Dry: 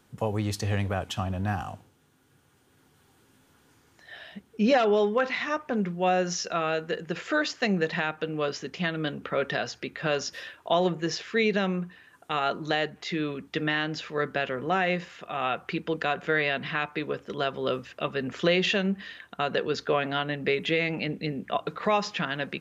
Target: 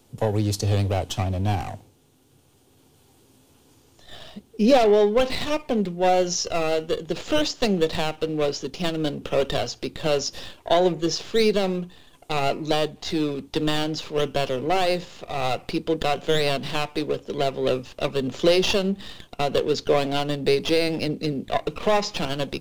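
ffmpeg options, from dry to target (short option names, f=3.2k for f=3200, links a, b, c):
-filter_complex "[0:a]equalizer=f=180:w=3.1:g=-5.5,acrossover=split=170|1000|2800[a][b][c][d];[c]aeval=exprs='abs(val(0))':c=same[e];[a][b][e][d]amix=inputs=4:normalize=0,volume=6.5dB"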